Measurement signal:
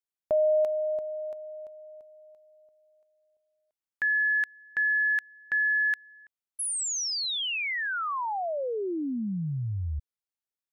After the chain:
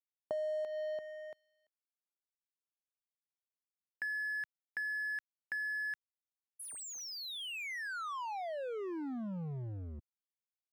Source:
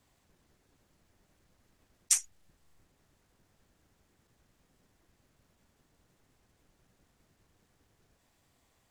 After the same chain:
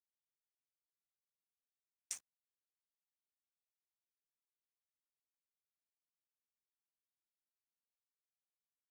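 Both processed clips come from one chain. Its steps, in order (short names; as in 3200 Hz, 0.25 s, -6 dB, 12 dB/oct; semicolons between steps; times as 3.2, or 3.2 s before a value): crossover distortion -38 dBFS; HPF 100 Hz; compressor, threshold -30 dBFS; high shelf 3800 Hz -7.5 dB; mismatched tape noise reduction decoder only; gain -4.5 dB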